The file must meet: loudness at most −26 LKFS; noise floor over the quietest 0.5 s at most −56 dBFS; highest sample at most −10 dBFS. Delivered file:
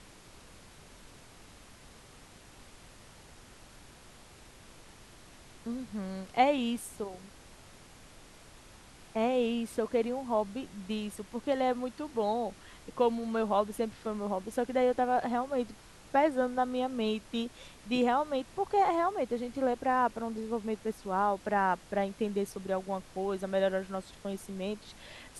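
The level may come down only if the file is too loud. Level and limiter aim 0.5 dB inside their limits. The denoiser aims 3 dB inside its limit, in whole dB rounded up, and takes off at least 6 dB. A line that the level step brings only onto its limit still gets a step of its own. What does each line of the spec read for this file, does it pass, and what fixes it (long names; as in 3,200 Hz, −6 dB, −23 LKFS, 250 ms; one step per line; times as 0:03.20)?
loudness −32.0 LKFS: in spec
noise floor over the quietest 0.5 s −54 dBFS: out of spec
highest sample −13.5 dBFS: in spec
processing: broadband denoise 6 dB, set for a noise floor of −54 dBFS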